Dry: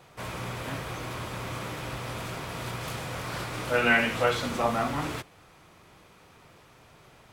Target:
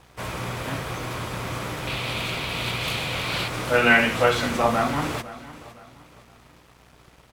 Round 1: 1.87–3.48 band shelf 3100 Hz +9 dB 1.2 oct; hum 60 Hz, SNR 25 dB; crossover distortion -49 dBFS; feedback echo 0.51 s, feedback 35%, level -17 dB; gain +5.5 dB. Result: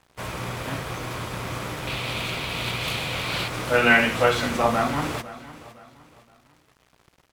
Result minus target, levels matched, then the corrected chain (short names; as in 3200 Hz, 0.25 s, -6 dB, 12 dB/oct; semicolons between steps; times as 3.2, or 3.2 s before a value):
crossover distortion: distortion +6 dB
1.87–3.48 band shelf 3100 Hz +9 dB 1.2 oct; hum 60 Hz, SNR 25 dB; crossover distortion -55.5 dBFS; feedback echo 0.51 s, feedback 35%, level -17 dB; gain +5.5 dB